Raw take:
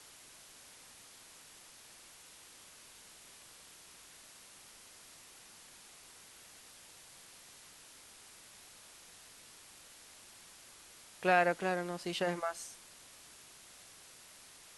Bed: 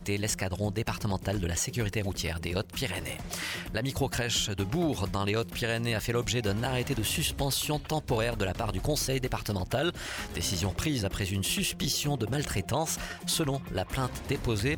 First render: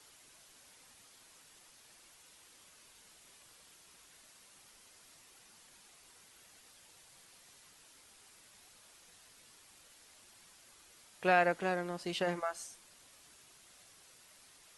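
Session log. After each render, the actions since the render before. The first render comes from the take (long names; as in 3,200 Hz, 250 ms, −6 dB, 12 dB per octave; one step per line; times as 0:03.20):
broadband denoise 6 dB, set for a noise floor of −57 dBFS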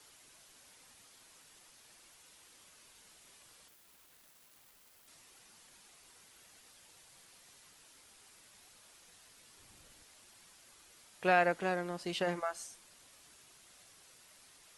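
0:03.68–0:05.08: phase distortion by the signal itself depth 0.15 ms
0:09.57–0:10.03: low-shelf EQ 300 Hz +11.5 dB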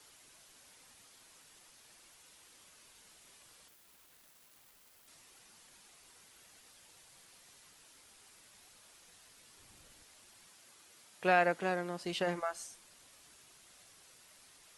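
0:10.48–0:12.04: high-pass filter 100 Hz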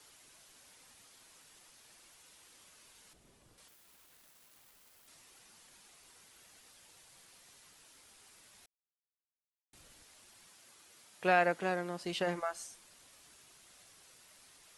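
0:03.13–0:03.58: tilt shelving filter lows +9.5 dB, about 650 Hz
0:08.66–0:09.73: silence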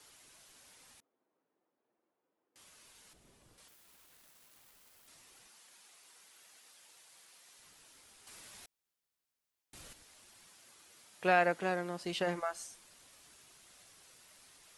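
0:01.00–0:02.56: four-pole ladder band-pass 400 Hz, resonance 25%
0:05.48–0:07.59: high-pass filter 540 Hz 6 dB per octave
0:08.27–0:09.93: clip gain +7 dB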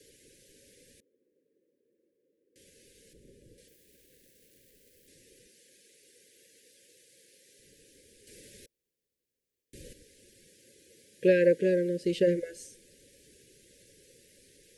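Chebyshev band-stop filter 570–1,600 Hz, order 5
low shelf with overshoot 630 Hz +8.5 dB, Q 3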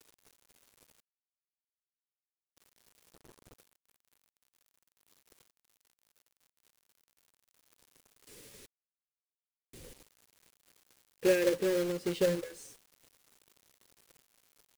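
flanger 0.48 Hz, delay 6.7 ms, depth 2 ms, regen −62%
log-companded quantiser 4 bits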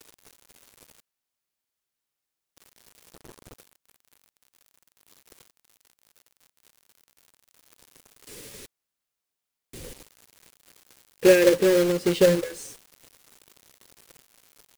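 level +10.5 dB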